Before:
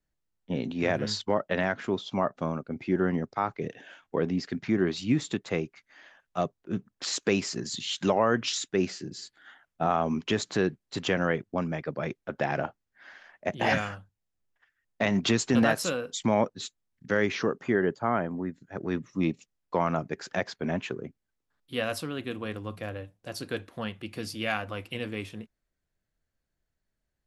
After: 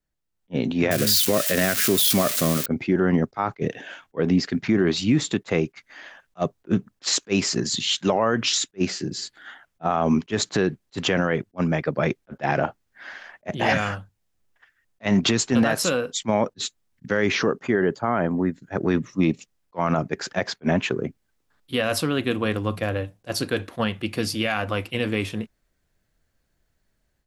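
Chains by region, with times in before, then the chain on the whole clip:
0:00.91–0:02.66: spike at every zero crossing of −20.5 dBFS + parametric band 890 Hz −14 dB 0.37 octaves
whole clip: automatic gain control gain up to 11.5 dB; brickwall limiter −10.5 dBFS; level that may rise only so fast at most 560 dB per second

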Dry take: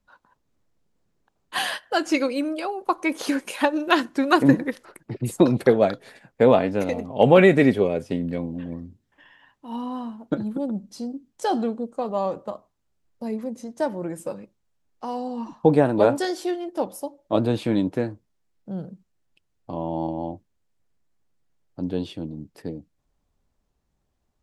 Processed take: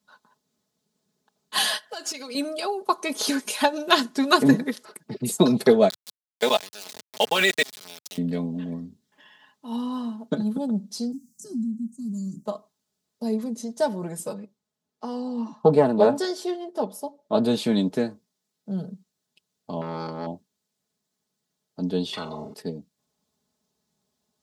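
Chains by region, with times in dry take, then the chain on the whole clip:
0:01.89–0:02.35: high-pass filter 460 Hz 6 dB per octave + downward compressor 16 to 1, threshold −34 dBFS + leveller curve on the samples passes 1
0:05.89–0:08.18: meter weighting curve ITU-R 468 + output level in coarse steps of 20 dB + centre clipping without the shift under −33 dBFS
0:11.12–0:12.46: inverse Chebyshev band-stop filter 460–3,700 Hz + high-shelf EQ 6,500 Hz −6 dB + multiband upward and downward compressor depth 70%
0:14.33–0:17.44: high-shelf EQ 2,400 Hz −9 dB + highs frequency-modulated by the lows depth 0.14 ms
0:19.81–0:20.27: parametric band 4,600 Hz +15 dB 0.29 octaves + saturating transformer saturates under 720 Hz
0:22.13–0:22.54: Savitzky-Golay smoothing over 65 samples + flutter between parallel walls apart 7.5 metres, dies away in 0.2 s + every bin compressed towards the loudest bin 10 to 1
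whole clip: high-pass filter 100 Hz 24 dB per octave; high shelf with overshoot 3,100 Hz +6.5 dB, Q 1.5; comb filter 4.7 ms, depth 68%; level −1 dB

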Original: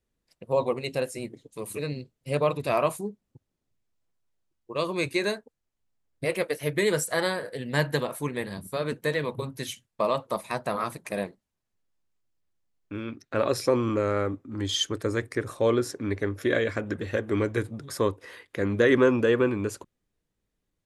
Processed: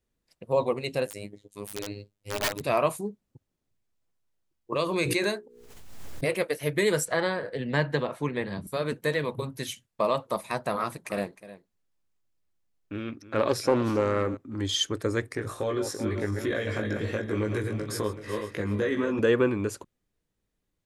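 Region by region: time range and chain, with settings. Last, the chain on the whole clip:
0:01.07–0:02.61: phases set to zero 102 Hz + wrap-around overflow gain 22 dB
0:04.72–0:06.36: mains-hum notches 60/120/180/240/300/360/420/480 Hz + background raised ahead of every attack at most 40 dB per second
0:07.05–0:08.67: Bessel low-pass filter 3,400 Hz + multiband upward and downward compressor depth 40%
0:10.79–0:14.37: single-tap delay 309 ms −15.5 dB + highs frequency-modulated by the lows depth 0.25 ms
0:15.36–0:19.19: feedback delay that plays each chunk backwards 189 ms, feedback 59%, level −10 dB + downward compressor 5 to 1, threshold −26 dBFS + double-tracking delay 19 ms −3 dB
whole clip: no processing

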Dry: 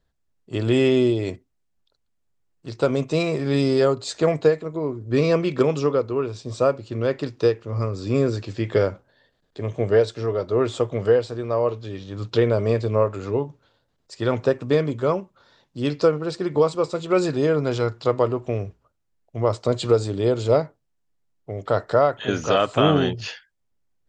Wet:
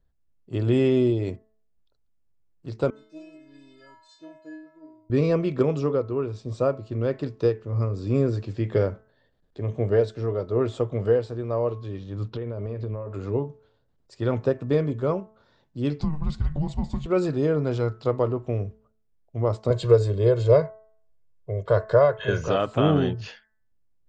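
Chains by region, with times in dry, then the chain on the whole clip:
0:02.90–0:05.10: high-shelf EQ 5,600 Hz +6.5 dB + stiff-string resonator 310 Hz, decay 0.84 s, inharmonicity 0.008
0:12.28–0:13.14: downward compressor 10 to 1, threshold −25 dBFS + high-frequency loss of the air 130 metres
0:16.00–0:17.06: downward compressor 10 to 1, threshold −20 dBFS + frequency shifter −300 Hz
0:19.70–0:22.48: dynamic equaliser 1,700 Hz, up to +5 dB, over −39 dBFS, Q 1.8 + comb filter 1.9 ms, depth 88%
whole clip: spectral tilt −2 dB per octave; hum removal 217.8 Hz, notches 9; level −5.5 dB

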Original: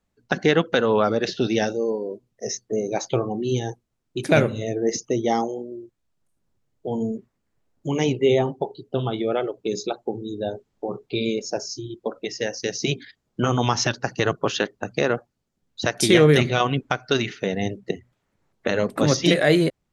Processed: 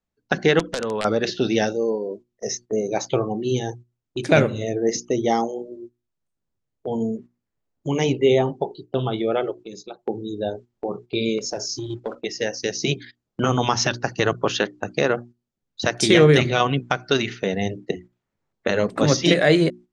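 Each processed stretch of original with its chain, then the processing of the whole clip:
0:00.59–0:01.05: downward compressor 5 to 1, threshold −23 dBFS + wrap-around overflow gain 17 dB
0:09.54–0:09.99: notch filter 420 Hz, Q 13 + downward compressor 1.5 to 1, threshold −52 dBFS
0:11.38–0:12.15: parametric band 110 Hz +6 dB 0.23 octaves + downward compressor 3 to 1, threshold −28 dBFS + leveller curve on the samples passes 1
whole clip: low-pass filter 8,200 Hz 24 dB per octave; mains-hum notches 60/120/180/240/300/360 Hz; noise gate −40 dBFS, range −10 dB; level +1.5 dB

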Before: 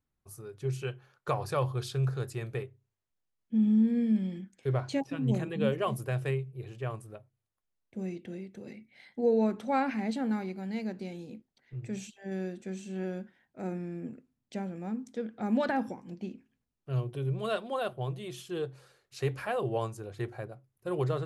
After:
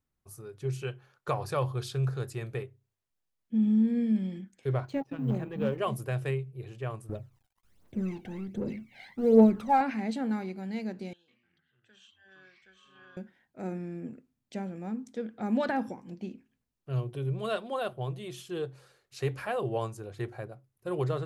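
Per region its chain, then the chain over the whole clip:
0:04.85–0:05.78: mu-law and A-law mismatch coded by A + parametric band 8,900 Hz −12 dB 2.7 octaves + gain into a clipping stage and back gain 21.5 dB
0:07.09–0:09.81: mu-law and A-law mismatch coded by mu + high-shelf EQ 2,600 Hz −7.5 dB + phase shifter 1.3 Hz, delay 1.4 ms, feedback 67%
0:11.13–0:13.17: pair of resonant band-passes 2,200 Hz, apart 1 octave + delay with pitch and tempo change per echo 149 ms, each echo −6 semitones, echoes 2, each echo −6 dB
whole clip: no processing

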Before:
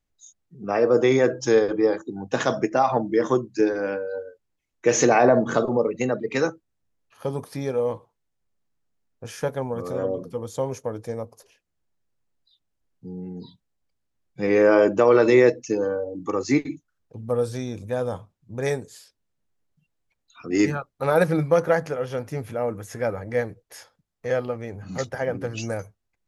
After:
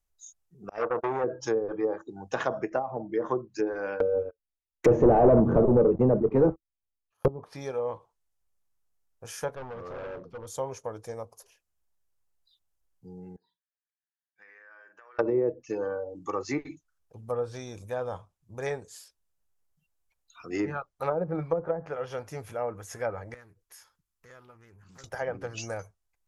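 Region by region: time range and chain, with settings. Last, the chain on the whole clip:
0:00.69–0:01.24: noise gate −21 dBFS, range −36 dB + saturating transformer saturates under 1,200 Hz
0:04.00–0:07.28: noise gate −43 dBFS, range −15 dB + low-shelf EQ 480 Hz +8.5 dB + leveller curve on the samples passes 3
0:09.55–0:10.47: gain into a clipping stage and back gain 28.5 dB + high-frequency loss of the air 230 metres
0:13.36–0:15.19: resonant band-pass 1,700 Hz, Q 6.8 + double-tracking delay 44 ms −14 dB + downward compressor 12 to 1, threshold −45 dBFS
0:23.34–0:25.04: flat-topped bell 610 Hz −9.5 dB 1 octave + downward compressor 2 to 1, threshold −54 dBFS + highs frequency-modulated by the lows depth 0.24 ms
whole clip: octave-band graphic EQ 125/250/500/2,000/4,000/8,000 Hz −8/−11/−4/−5/−6/−3 dB; treble cut that deepens with the level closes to 440 Hz, closed at −21 dBFS; high-shelf EQ 4,500 Hz +7 dB

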